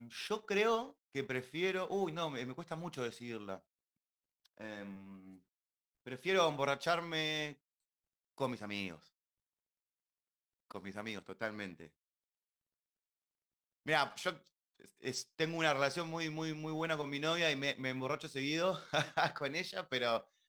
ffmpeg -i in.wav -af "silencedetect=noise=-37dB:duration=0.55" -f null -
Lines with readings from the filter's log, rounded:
silence_start: 3.55
silence_end: 4.61 | silence_duration: 1.06
silence_start: 4.83
silence_end: 6.07 | silence_duration: 1.24
silence_start: 7.50
silence_end: 8.41 | silence_duration: 0.91
silence_start: 8.93
silence_end: 10.71 | silence_duration: 1.78
silence_start: 11.66
silence_end: 13.88 | silence_duration: 2.21
silence_start: 14.31
silence_end: 15.05 | silence_duration: 0.74